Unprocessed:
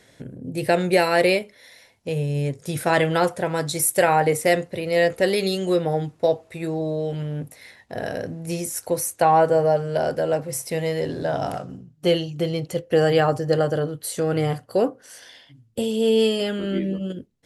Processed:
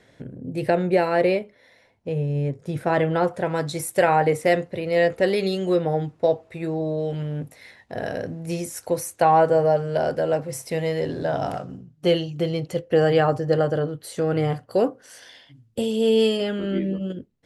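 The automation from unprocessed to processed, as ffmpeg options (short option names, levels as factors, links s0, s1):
-af "asetnsamples=n=441:p=0,asendcmd='0.7 lowpass f 1100;3.34 lowpass f 2800;6.98 lowpass f 4900;12.88 lowpass f 3000;14.71 lowpass f 7500;16.37 lowpass f 3000',lowpass=f=2500:p=1"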